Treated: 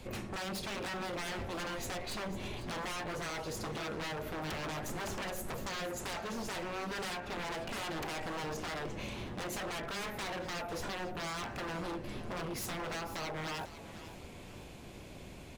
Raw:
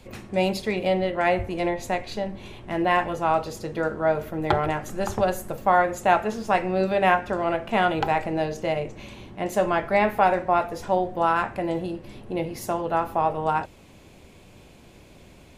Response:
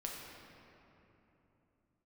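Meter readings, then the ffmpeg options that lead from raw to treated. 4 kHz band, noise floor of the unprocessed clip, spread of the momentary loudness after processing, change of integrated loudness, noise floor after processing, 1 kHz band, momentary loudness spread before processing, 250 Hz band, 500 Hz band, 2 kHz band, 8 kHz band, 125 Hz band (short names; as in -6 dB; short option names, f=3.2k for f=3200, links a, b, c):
-3.5 dB, -50 dBFS, 8 LU, -14.5 dB, -49 dBFS, -17.5 dB, 10 LU, -13.0 dB, -17.0 dB, -11.0 dB, -1.5 dB, -10.5 dB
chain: -filter_complex "[0:a]acompressor=threshold=-29dB:ratio=4,aeval=exprs='0.02*(abs(mod(val(0)/0.02+3,4)-2)-1)':c=same,asplit=5[a][b][c][d][e];[b]adelay=498,afreqshift=48,volume=-14dB[f];[c]adelay=996,afreqshift=96,volume=-22dB[g];[d]adelay=1494,afreqshift=144,volume=-29.9dB[h];[e]adelay=1992,afreqshift=192,volume=-37.9dB[i];[a][f][g][h][i]amix=inputs=5:normalize=0"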